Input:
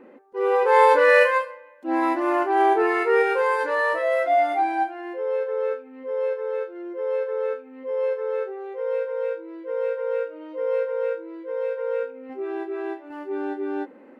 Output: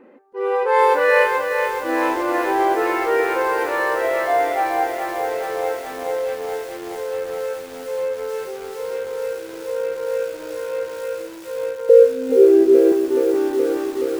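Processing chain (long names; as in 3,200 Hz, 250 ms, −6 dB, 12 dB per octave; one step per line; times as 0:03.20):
0:11.89–0:12.92: low shelf with overshoot 640 Hz +12 dB, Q 3
feedback echo at a low word length 424 ms, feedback 80%, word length 6 bits, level −6.5 dB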